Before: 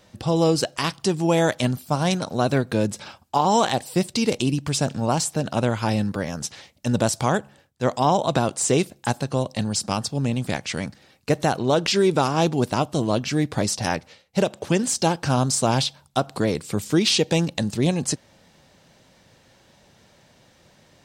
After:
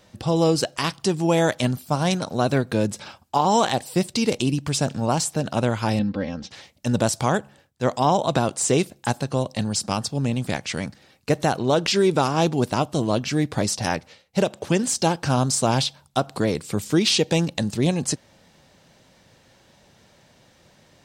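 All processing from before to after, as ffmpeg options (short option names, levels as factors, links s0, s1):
-filter_complex "[0:a]asettb=1/sr,asplit=3[s0][s1][s2];[s0]atrim=end=5.994[s3];[s1]atrim=start=5.99:end=6.51,asetpts=PTS-STARTPTS,afade=t=in:d=0.004:c=qsin,afade=t=out:st=0.516:d=0.004:c=qsin,lowpass=f=4200:w=0.5412,lowpass=f=4200:w=1.3066,equalizer=f=1200:t=o:w=1.9:g=-7,aecho=1:1:3.8:0.69,atrim=end_sample=22932[s4];[s2]atrim=start=6.506[s5];[s3][s4]acrossfade=d=0.004:c1=hsin:c2=qsin[s6];[s6][s5]acrossfade=d=0.004:c1=qsin:c2=hsin"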